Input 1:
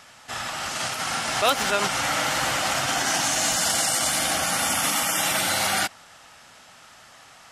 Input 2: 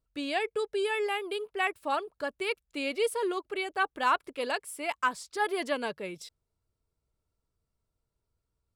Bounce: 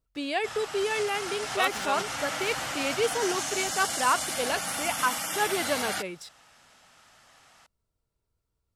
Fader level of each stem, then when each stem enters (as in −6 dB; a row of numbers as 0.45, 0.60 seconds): −8.5, +1.5 decibels; 0.15, 0.00 seconds